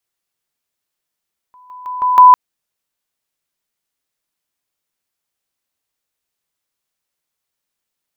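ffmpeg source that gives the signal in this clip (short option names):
-f lavfi -i "aevalsrc='pow(10,(-41.5+10*floor(t/0.16))/20)*sin(2*PI*999*t)':d=0.8:s=44100"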